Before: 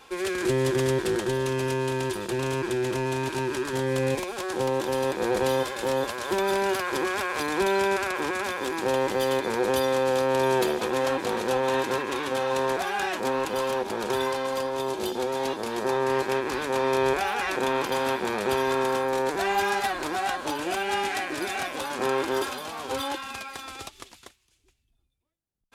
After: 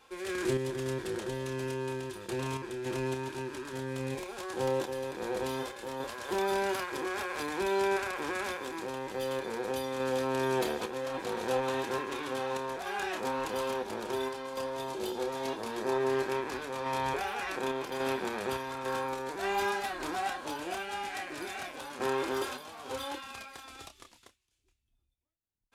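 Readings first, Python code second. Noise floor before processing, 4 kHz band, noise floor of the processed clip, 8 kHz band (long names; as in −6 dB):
−66 dBFS, −8.0 dB, −73 dBFS, −8.0 dB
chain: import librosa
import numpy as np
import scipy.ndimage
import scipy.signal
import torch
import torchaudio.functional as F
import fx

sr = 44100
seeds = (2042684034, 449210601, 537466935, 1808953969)

y = fx.chorus_voices(x, sr, voices=6, hz=0.13, base_ms=29, depth_ms=2.2, mix_pct=30)
y = fx.tremolo_random(y, sr, seeds[0], hz=3.5, depth_pct=55)
y = F.gain(torch.from_numpy(y), -3.0).numpy()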